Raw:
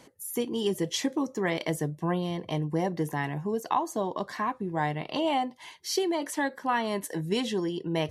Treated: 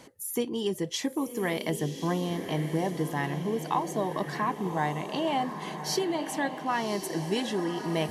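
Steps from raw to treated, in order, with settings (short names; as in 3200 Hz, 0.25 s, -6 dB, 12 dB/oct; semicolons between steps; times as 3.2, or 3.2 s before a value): vocal rider 0.5 s; diffused feedback echo 1.093 s, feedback 53%, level -8.5 dB; gain -1 dB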